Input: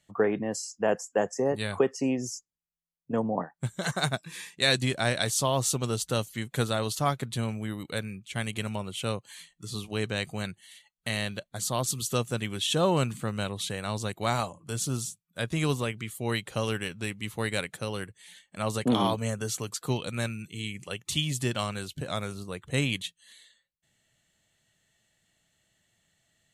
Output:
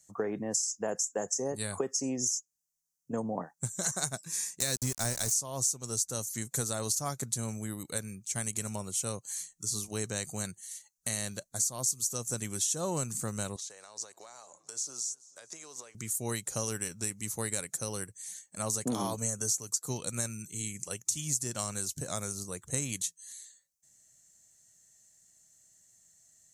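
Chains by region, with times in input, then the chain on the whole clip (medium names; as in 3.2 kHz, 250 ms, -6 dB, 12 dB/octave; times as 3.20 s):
4.60–5.33 s: small samples zeroed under -30.5 dBFS + bass shelf 220 Hz +8.5 dB
13.56–15.95 s: three-band isolator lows -24 dB, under 380 Hz, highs -19 dB, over 7.2 kHz + compression 8:1, threshold -43 dBFS + modulated delay 219 ms, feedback 59%, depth 154 cents, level -23.5 dB
whole clip: resonant high shelf 4.5 kHz +12.5 dB, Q 3; compression 6:1, threshold -24 dBFS; trim -4 dB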